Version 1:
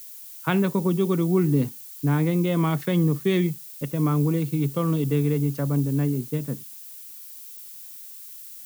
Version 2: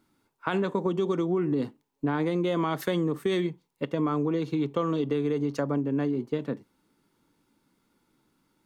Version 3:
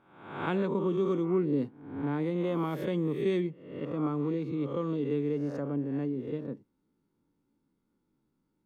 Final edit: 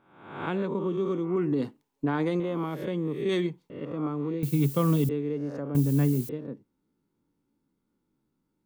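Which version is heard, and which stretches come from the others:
3
1.36–2.4 from 2
3.29–3.7 from 2
4.43–5.09 from 1
5.75–6.29 from 1

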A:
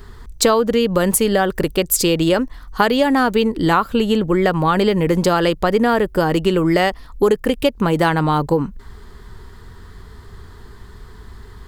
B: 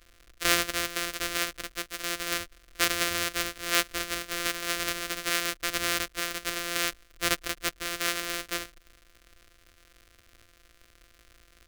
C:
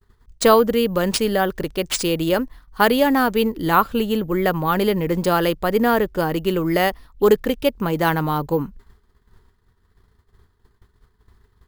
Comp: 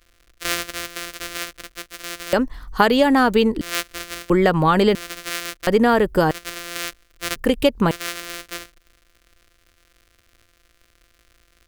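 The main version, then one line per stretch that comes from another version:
B
2.33–3.61 from A
4.3–4.95 from A
5.67–6.31 from A
7.36–7.91 from A
not used: C

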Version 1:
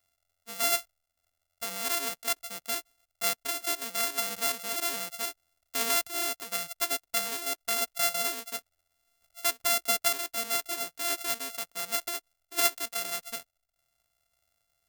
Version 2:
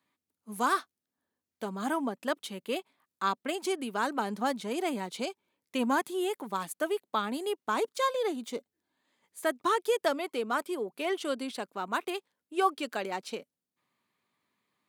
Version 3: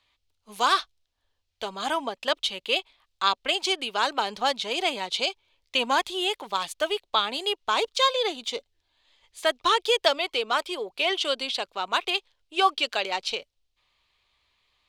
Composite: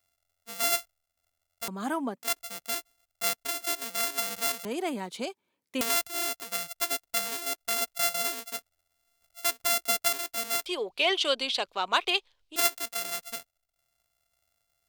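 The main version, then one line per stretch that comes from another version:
1
1.68–2.23 from 2
4.65–5.81 from 2
10.66–12.56 from 3

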